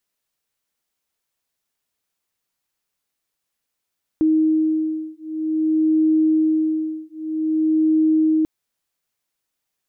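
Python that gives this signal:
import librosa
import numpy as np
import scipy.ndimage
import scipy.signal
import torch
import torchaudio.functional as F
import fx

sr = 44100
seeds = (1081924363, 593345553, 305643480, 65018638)

y = fx.two_tone_beats(sr, length_s=4.24, hz=314.0, beat_hz=0.52, level_db=-19.0)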